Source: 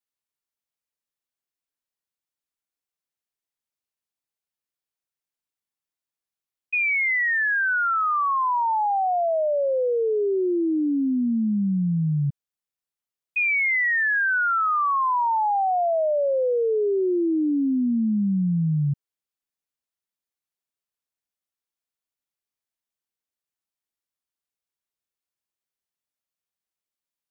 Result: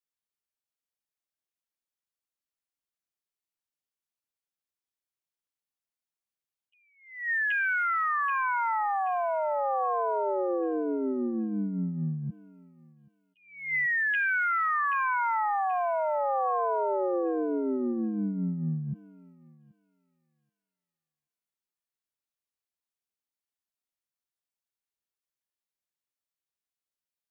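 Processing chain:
feedback echo with a high-pass in the loop 780 ms, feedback 40%, high-pass 880 Hz, level −11 dB
formants moved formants +3 semitones
level that may rise only so fast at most 110 dB per second
level −5 dB

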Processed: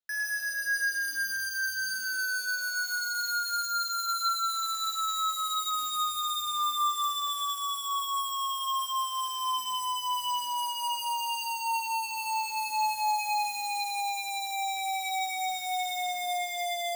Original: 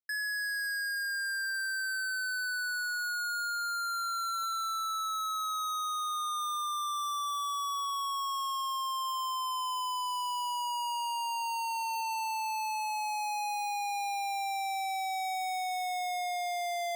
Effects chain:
high shelf with overshoot 5,600 Hz −11.5 dB, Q 3
sample-rate reduction 11,000 Hz, jitter 0%
convolution reverb, pre-delay 3 ms, DRR 3 dB

